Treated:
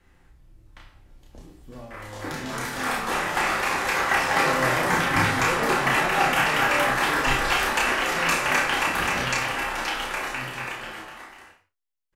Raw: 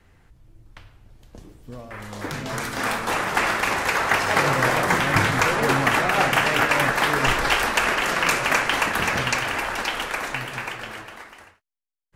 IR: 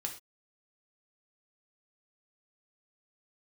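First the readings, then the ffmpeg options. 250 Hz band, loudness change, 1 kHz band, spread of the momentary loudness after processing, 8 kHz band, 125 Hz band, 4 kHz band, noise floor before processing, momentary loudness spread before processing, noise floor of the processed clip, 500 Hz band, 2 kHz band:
-2.0 dB, -1.5 dB, -1.0 dB, 13 LU, -1.5 dB, -4.0 dB, -2.0 dB, -59 dBFS, 13 LU, -61 dBFS, -2.5 dB, -1.5 dB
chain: -filter_complex "[0:a]asplit=2[s0][s1];[s1]adelay=31,volume=0.708[s2];[s0][s2]amix=inputs=2:normalize=0[s3];[1:a]atrim=start_sample=2205[s4];[s3][s4]afir=irnorm=-1:irlink=0,volume=0.668"

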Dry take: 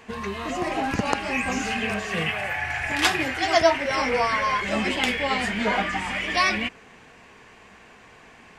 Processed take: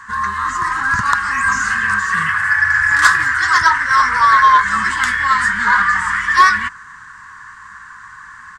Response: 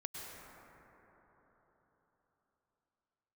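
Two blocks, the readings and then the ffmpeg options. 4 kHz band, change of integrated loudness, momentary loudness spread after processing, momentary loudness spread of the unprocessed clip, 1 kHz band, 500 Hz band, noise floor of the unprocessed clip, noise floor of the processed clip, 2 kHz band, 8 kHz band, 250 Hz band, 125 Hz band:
+1.0 dB, +10.5 dB, 7 LU, 6 LU, +12.5 dB, -15.5 dB, -50 dBFS, -38 dBFS, +13.0 dB, +8.0 dB, -6.5 dB, +2.5 dB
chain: -af "firequalizer=gain_entry='entry(110,0);entry(260,-14);entry(680,-30);entry(1000,12);entry(1700,14);entry(2400,-13);entry(3800,-2);entry(8100,7);entry(12000,-6)':delay=0.05:min_phase=1,acontrast=52,volume=0.891"

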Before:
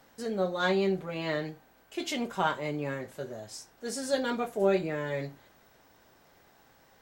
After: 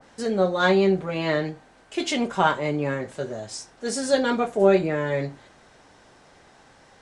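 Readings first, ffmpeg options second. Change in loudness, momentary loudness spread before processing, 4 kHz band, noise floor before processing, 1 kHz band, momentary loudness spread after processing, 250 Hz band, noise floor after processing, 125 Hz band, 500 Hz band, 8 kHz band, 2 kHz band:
+8.0 dB, 14 LU, +6.5 dB, -62 dBFS, +8.0 dB, 14 LU, +8.0 dB, -54 dBFS, +8.0 dB, +8.0 dB, +7.0 dB, +7.5 dB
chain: -af "aresample=22050,aresample=44100,adynamicequalizer=threshold=0.00631:dfrequency=2100:dqfactor=0.7:tfrequency=2100:tqfactor=0.7:attack=5:release=100:ratio=0.375:range=2:mode=cutabove:tftype=highshelf,volume=2.51"

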